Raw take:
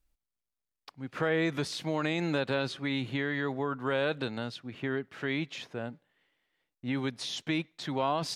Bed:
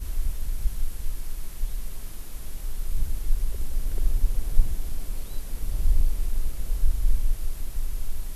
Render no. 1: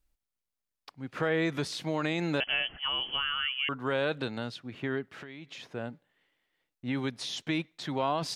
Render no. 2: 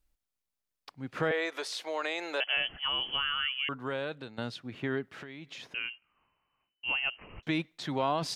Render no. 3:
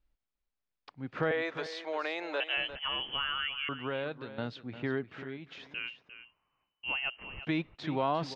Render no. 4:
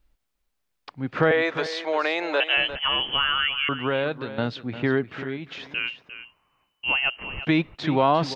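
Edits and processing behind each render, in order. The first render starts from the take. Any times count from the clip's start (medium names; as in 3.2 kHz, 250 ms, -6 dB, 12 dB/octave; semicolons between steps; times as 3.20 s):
2.40–3.69 s: frequency inversion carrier 3.2 kHz; 5.08–5.71 s: compression 12:1, threshold -40 dBFS
1.31–2.57 s: high-pass 440 Hz 24 dB/octave; 3.41–4.38 s: fade out, to -13.5 dB; 5.74–7.43 s: frequency inversion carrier 3 kHz
distance through air 180 m; delay 351 ms -12.5 dB
trim +10.5 dB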